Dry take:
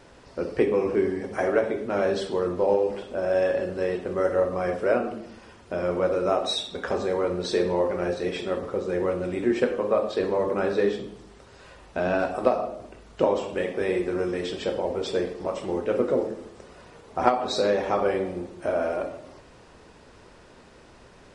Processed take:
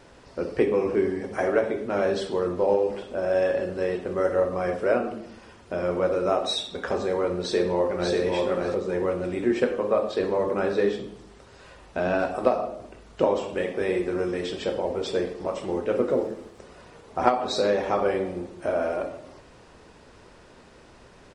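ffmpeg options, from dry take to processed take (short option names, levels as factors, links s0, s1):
-filter_complex "[0:a]asplit=2[s0][s1];[s1]afade=t=in:st=7.4:d=0.01,afade=t=out:st=8.15:d=0.01,aecho=0:1:590|1180|1770:0.794328|0.119149|0.0178724[s2];[s0][s2]amix=inputs=2:normalize=0,asettb=1/sr,asplit=3[s3][s4][s5];[s3]atrim=end=16.094[s6];[s4]atrim=start=16.09:end=16.59,asetpts=PTS-STARTPTS,afade=t=in:d=0.004:c=qsin,afade=t=out:st=0.496:d=0.004:c=qsin,aeval=exprs='sgn(val(0))*max(abs(val(0))-0.00126,0)':c=same[s7];[s5]atrim=start=16.586[s8];[s6][s7]acrossfade=d=0.004:c1=hsin:c2=qsin[s9];[s9][s8]acrossfade=d=0.004:c1=qsin:c2=hsin"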